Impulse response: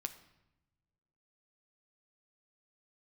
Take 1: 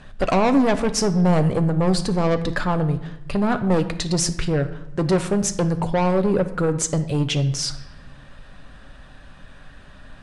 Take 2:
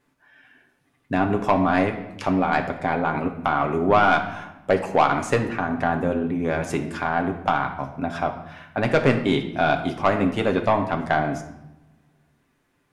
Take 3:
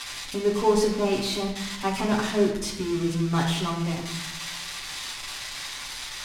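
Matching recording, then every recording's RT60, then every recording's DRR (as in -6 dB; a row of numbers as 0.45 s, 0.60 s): 1; 1.0 s, 0.90 s, 0.90 s; 7.5 dB, 3.0 dB, -5.0 dB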